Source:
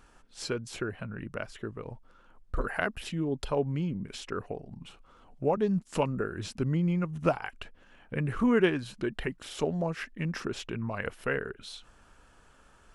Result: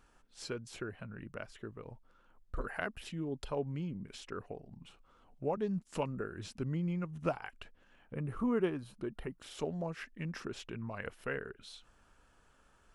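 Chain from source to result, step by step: spectral gain 8.12–9.4, 1400–8500 Hz -7 dB; gain -7.5 dB

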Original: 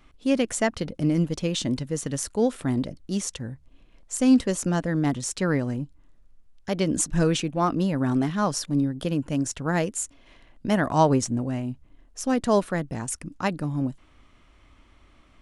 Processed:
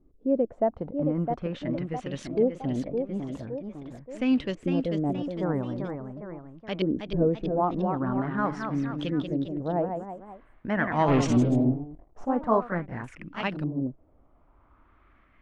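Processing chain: 11.08–12.25 sample leveller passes 3; LFO low-pass saw up 0.44 Hz 370–3300 Hz; echoes that change speed 0.694 s, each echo +1 st, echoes 3, each echo -6 dB; gain -6 dB

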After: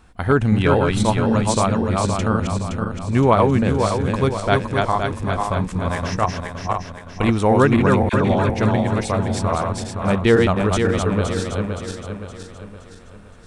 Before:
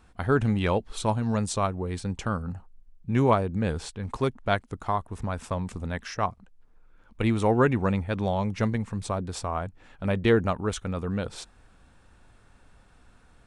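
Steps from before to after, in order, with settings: regenerating reverse delay 0.259 s, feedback 67%, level -2.5 dB; 8.09–8.5 dispersion lows, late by 43 ms, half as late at 1100 Hz; gain +6 dB

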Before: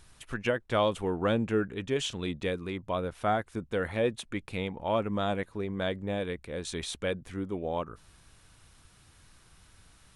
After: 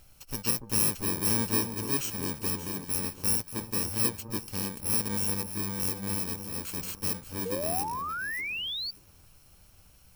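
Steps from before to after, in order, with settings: FFT order left unsorted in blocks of 64 samples; echo with dull and thin repeats by turns 0.289 s, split 1100 Hz, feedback 53%, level -7.5 dB; painted sound rise, 7.45–8.91, 450–4700 Hz -34 dBFS

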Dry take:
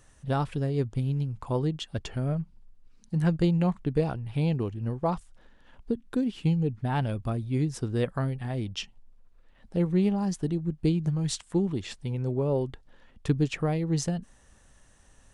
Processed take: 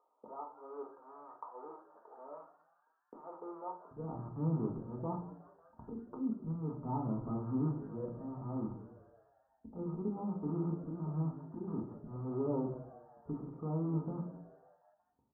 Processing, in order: rattling part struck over -34 dBFS, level -17 dBFS; gate -47 dBFS, range -54 dB; HPF 520 Hz 24 dB/oct, from 3.91 s 70 Hz; level quantiser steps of 11 dB; auto swell 0.531 s; upward compressor, threshold -34 dBFS; limiter -27 dBFS, peak gain reduction 9 dB; rippled Chebyshev low-pass 1300 Hz, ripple 9 dB; frequency-shifting echo 0.183 s, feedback 58%, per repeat +110 Hz, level -19 dB; reverb RT60 0.40 s, pre-delay 4 ms, DRR 0.5 dB; gain +4 dB

